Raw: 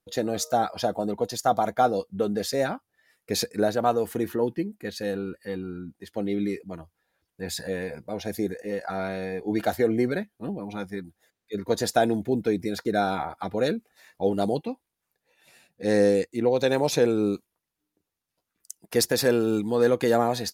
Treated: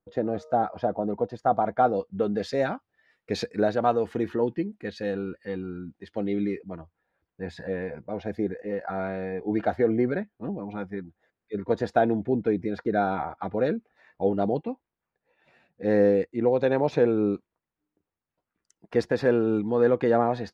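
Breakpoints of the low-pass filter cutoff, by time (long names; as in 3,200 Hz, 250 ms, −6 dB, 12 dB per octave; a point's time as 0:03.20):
0:01.43 1,300 Hz
0:02.47 3,300 Hz
0:06.27 3,300 Hz
0:06.78 1,900 Hz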